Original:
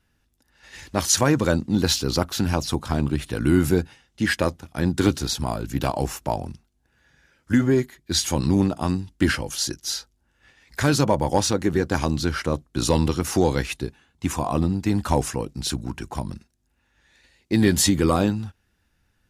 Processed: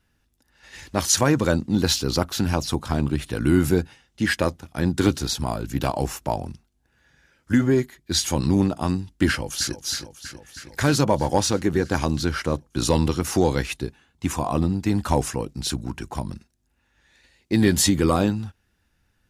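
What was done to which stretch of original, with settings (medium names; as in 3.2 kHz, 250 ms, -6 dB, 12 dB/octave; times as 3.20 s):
9.28–9.81 s: echo throw 320 ms, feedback 75%, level -11.5 dB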